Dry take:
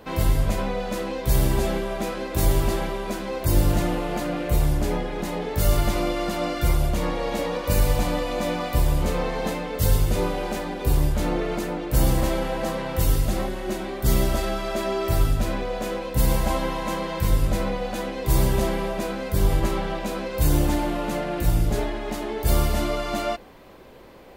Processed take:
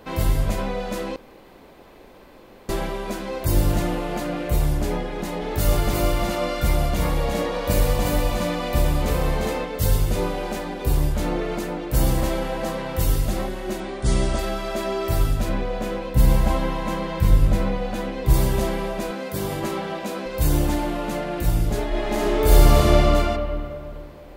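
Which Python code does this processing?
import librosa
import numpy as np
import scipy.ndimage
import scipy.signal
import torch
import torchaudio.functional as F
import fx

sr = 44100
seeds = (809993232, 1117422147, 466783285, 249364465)

y = fx.echo_single(x, sr, ms=352, db=-3.5, at=(5.4, 9.64), fade=0.02)
y = fx.brickwall_lowpass(y, sr, high_hz=10000.0, at=(13.8, 14.39))
y = fx.bass_treble(y, sr, bass_db=5, treble_db=-4, at=(15.49, 18.34))
y = fx.highpass(y, sr, hz=150.0, slope=12, at=(19.11, 20.26))
y = fx.reverb_throw(y, sr, start_s=21.88, length_s=1.12, rt60_s=2.5, drr_db=-6.5)
y = fx.edit(y, sr, fx.room_tone_fill(start_s=1.16, length_s=1.53), tone=tone)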